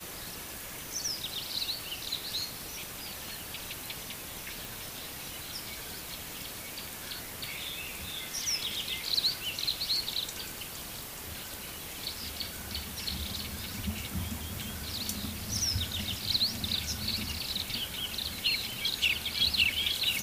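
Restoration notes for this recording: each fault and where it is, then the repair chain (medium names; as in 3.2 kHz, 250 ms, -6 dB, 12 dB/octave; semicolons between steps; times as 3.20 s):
4.65 s: pop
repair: de-click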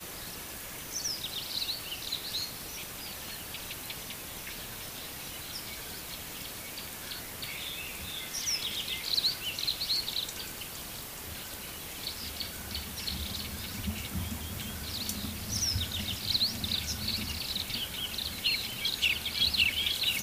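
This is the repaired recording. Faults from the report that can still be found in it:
nothing left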